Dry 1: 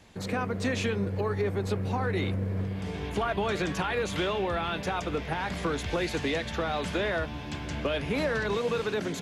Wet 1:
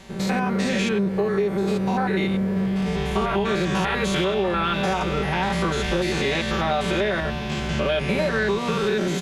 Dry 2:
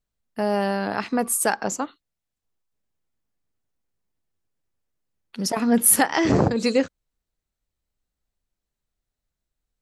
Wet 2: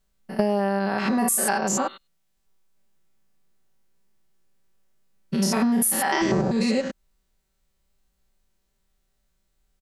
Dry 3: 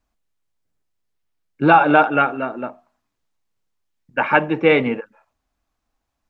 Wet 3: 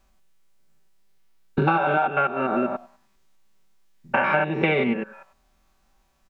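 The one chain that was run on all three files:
spectrum averaged block by block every 100 ms
comb filter 5.2 ms, depth 88%
downward compressor 10 to 1, threshold −28 dBFS
loudness normalisation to −23 LKFS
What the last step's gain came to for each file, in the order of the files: +9.5, +9.0, +9.5 decibels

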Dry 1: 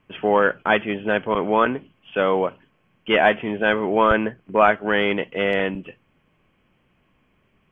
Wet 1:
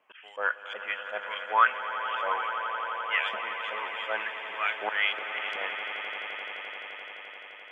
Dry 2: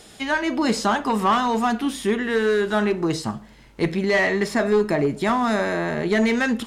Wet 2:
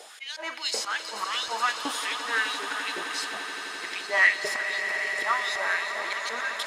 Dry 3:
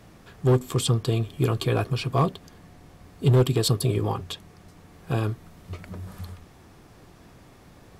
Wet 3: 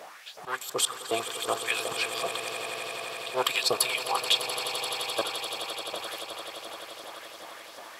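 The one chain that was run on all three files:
auto-filter high-pass saw up 2.7 Hz 530–5,500 Hz
volume swells 164 ms
echo that builds up and dies away 86 ms, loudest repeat 8, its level −14 dB
normalise the peak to −9 dBFS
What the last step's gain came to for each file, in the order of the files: −5.0, −1.0, +7.5 decibels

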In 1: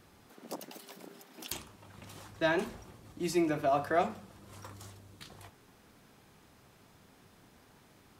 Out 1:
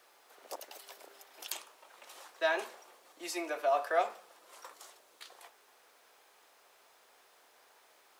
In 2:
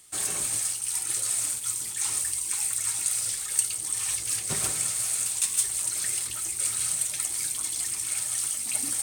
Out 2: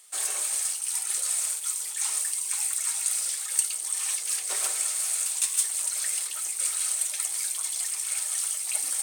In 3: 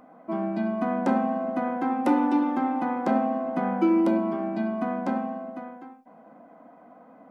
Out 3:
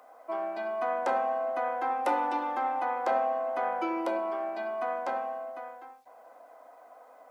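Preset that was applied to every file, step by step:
high-pass filter 480 Hz 24 dB per octave
bit-depth reduction 12 bits, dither none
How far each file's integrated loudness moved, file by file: −2.5, 0.0, −5.0 LU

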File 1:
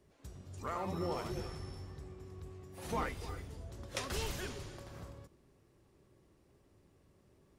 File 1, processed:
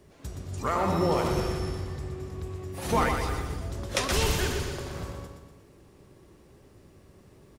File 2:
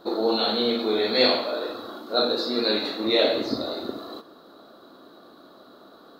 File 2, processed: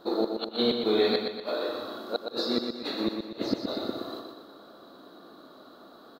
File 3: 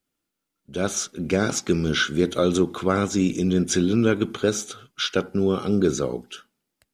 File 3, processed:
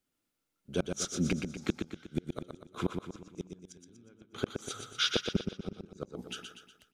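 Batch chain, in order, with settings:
dynamic equaliser 150 Hz, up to +4 dB, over −31 dBFS, Q 0.7
gate with flip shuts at −12 dBFS, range −38 dB
repeating echo 121 ms, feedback 49%, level −6 dB
normalise the peak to −12 dBFS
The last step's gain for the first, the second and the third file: +11.5, −2.0, −3.0 decibels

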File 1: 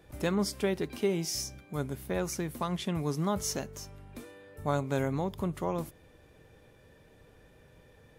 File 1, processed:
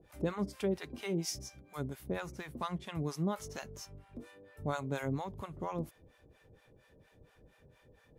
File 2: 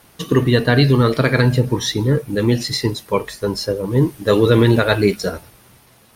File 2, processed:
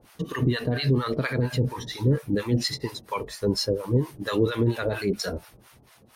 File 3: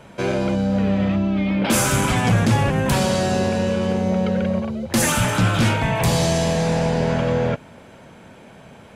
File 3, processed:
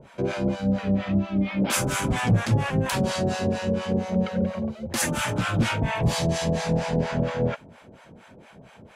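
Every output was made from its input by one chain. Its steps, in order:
high-shelf EQ 8,900 Hz −5 dB
brickwall limiter −11 dBFS
two-band tremolo in antiphase 4.3 Hz, depth 100%, crossover 670 Hz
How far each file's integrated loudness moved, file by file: −6.0, −9.5, −5.5 LU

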